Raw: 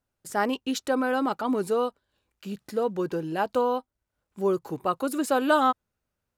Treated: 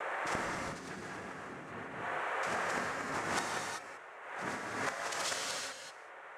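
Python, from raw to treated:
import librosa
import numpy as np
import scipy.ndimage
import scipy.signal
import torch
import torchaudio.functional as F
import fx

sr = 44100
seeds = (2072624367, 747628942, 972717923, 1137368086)

p1 = fx.wiener(x, sr, points=9)
p2 = fx.rider(p1, sr, range_db=10, speed_s=2.0)
p3 = p1 + (p2 * librosa.db_to_amplitude(0.0))
p4 = p3 + 10.0 ** (-39.0 / 20.0) * np.sin(2.0 * np.pi * 900.0 * np.arange(len(p3)) / sr)
p5 = fx.filter_sweep_highpass(p4, sr, from_hz=290.0, to_hz=2100.0, start_s=1.07, end_s=4.07, q=0.94)
p6 = fx.noise_vocoder(p5, sr, seeds[0], bands=3)
p7 = fx.gate_flip(p6, sr, shuts_db=-22.0, range_db=-29)
p8 = fx.rev_gated(p7, sr, seeds[1], gate_ms=410, shape='flat', drr_db=-3.0)
y = fx.pre_swell(p8, sr, db_per_s=49.0)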